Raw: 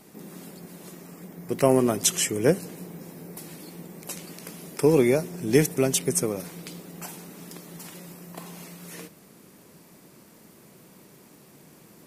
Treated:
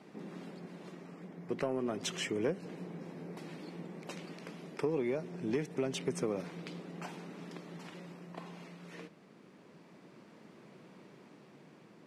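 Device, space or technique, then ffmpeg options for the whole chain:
AM radio: -af "highpass=140,lowpass=3300,acompressor=threshold=-23dB:ratio=10,asoftclip=type=tanh:threshold=-17dB,tremolo=f=0.28:d=0.32,volume=-2dB"

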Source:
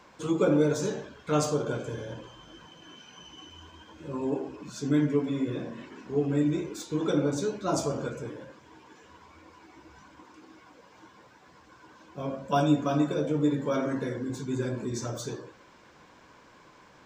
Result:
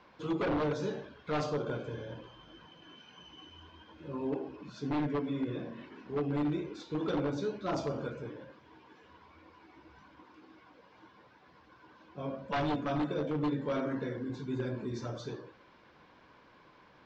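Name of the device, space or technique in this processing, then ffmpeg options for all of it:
synthesiser wavefolder: -af "aeval=exprs='0.0891*(abs(mod(val(0)/0.0891+3,4)-2)-1)':channel_layout=same,lowpass=frequency=4600:width=0.5412,lowpass=frequency=4600:width=1.3066,volume=-4.5dB"

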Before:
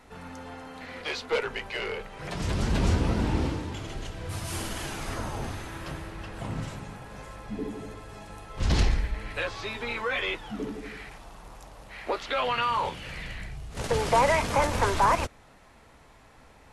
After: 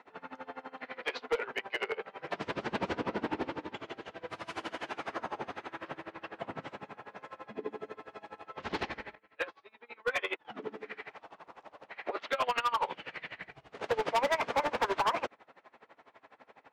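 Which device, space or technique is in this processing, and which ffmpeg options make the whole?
helicopter radio: -filter_complex "[0:a]asettb=1/sr,asplit=3[link_01][link_02][link_03];[link_01]atrim=end=9.154[link_04];[link_02]atrim=start=9.15:end=10.45,asetpts=PTS-STARTPTS,afade=type=in:duration=0.004:curve=qsin,afade=type=out:start_time=1.296:duration=0.004:curve=qsin,agate=range=-20dB:threshold=-29dB:ratio=16:detection=peak[link_05];[link_03]atrim=start=10.446[link_06];[link_04][link_05]acrossfade=duration=0.004:curve1=hsin:curve2=qsin[link_07];[link_07][link_06]acrossfade=duration=0.004:curve1=qsin:curve2=hsin,highpass=350,lowpass=2600,aeval=exprs='val(0)*pow(10,-23*(0.5-0.5*cos(2*PI*12*n/s))/20)':channel_layout=same,asoftclip=type=hard:threshold=-28.5dB,volume=4.5dB"

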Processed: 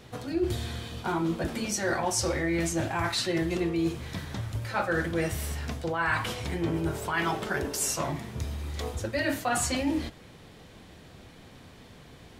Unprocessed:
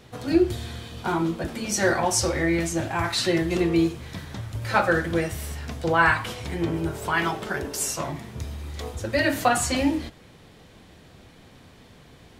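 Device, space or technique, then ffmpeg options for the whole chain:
compression on the reversed sound: -af "areverse,acompressor=threshold=-24dB:ratio=10,areverse"

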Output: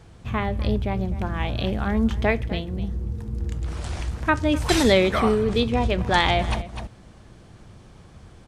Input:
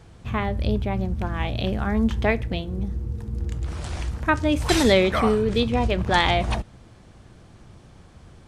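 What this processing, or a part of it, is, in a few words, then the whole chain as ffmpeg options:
ducked delay: -filter_complex "[0:a]asplit=3[link_01][link_02][link_03];[link_02]adelay=252,volume=-5.5dB[link_04];[link_03]apad=whole_len=384914[link_05];[link_04][link_05]sidechaincompress=threshold=-32dB:ratio=8:attack=12:release=315[link_06];[link_01][link_06]amix=inputs=2:normalize=0"

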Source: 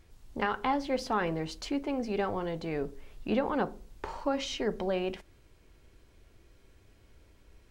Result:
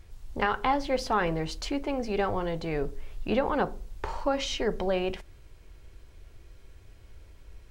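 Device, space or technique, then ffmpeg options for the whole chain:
low shelf boost with a cut just above: -af "lowshelf=frequency=99:gain=7.5,equalizer=frequency=240:width_type=o:width=0.97:gain=-5.5,volume=4dB"

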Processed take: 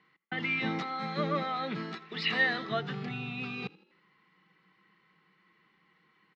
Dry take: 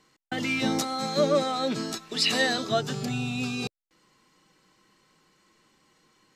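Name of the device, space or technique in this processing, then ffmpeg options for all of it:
frequency-shifting delay pedal into a guitar cabinet: -filter_complex "[0:a]asplit=5[link_01][link_02][link_03][link_04][link_05];[link_02]adelay=81,afreqshift=36,volume=-22dB[link_06];[link_03]adelay=162,afreqshift=72,volume=-27.5dB[link_07];[link_04]adelay=243,afreqshift=108,volume=-33dB[link_08];[link_05]adelay=324,afreqshift=144,volume=-38.5dB[link_09];[link_01][link_06][link_07][link_08][link_09]amix=inputs=5:normalize=0,highpass=92,equalizer=frequency=110:width_type=q:width=4:gain=-7,equalizer=frequency=180:width_type=q:width=4:gain=8,equalizer=frequency=260:width_type=q:width=4:gain=-7,equalizer=frequency=580:width_type=q:width=4:gain=-8,equalizer=frequency=1200:width_type=q:width=4:gain=4,equalizer=frequency=2000:width_type=q:width=4:gain=9,lowpass=frequency=3500:width=0.5412,lowpass=frequency=3500:width=1.3066,volume=-5dB"

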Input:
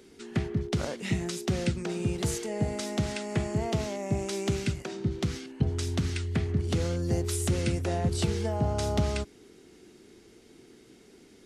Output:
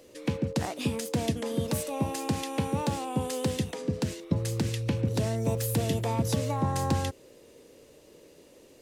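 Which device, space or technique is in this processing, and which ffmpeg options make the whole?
nightcore: -af "asetrate=57330,aresample=44100"

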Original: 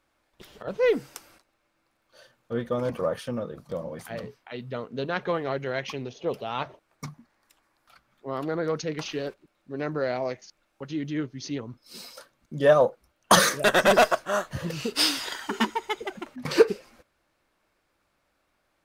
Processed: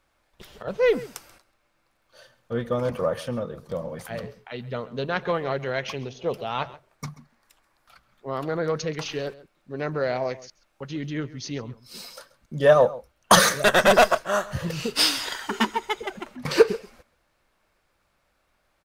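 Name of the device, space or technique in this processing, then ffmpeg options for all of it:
low shelf boost with a cut just above: -filter_complex "[0:a]lowshelf=frequency=61:gain=6.5,equalizer=frequency=300:width_type=o:width=0.56:gain=-5,asplit=2[link_01][link_02];[link_02]adelay=134.1,volume=-18dB,highshelf=frequency=4000:gain=-3.02[link_03];[link_01][link_03]amix=inputs=2:normalize=0,volume=2.5dB"

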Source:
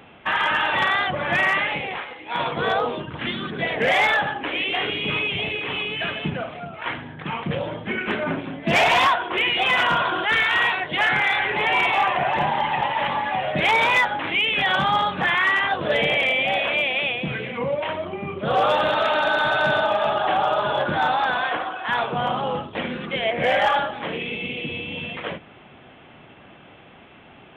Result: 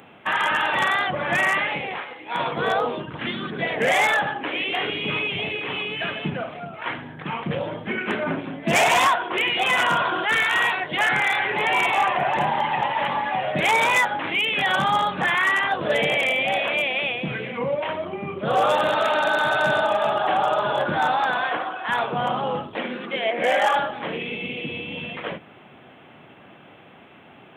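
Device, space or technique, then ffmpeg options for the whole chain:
budget condenser microphone: -filter_complex "[0:a]highpass=110,highshelf=frequency=5600:width_type=q:width=1.5:gain=9,asettb=1/sr,asplit=3[link_01][link_02][link_03];[link_01]atrim=end=22.754[link_04];[link_02]atrim=start=22.75:end=23.73,asetpts=PTS-STARTPTS,afade=type=in:duration=0.004:curve=qsin,afade=type=out:start_time=0.976:duration=0.004:curve=qsin,highpass=frequency=210:width=0.5412,highpass=frequency=210:width=1.3066[link_05];[link_03]atrim=start=23.726[link_06];[link_04][link_05]acrossfade=duration=0.004:curve1=hsin:curve2=qsin[link_07];[link_07][link_06]acrossfade=duration=0.004:curve1=qsin:curve2=hsin"

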